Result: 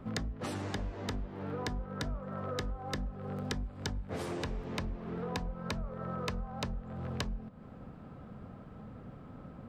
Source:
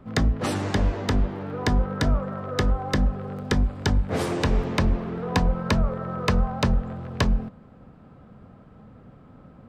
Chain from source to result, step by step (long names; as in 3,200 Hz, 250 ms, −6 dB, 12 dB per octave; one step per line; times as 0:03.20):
downward compressor 10 to 1, threshold −34 dBFS, peak gain reduction 18 dB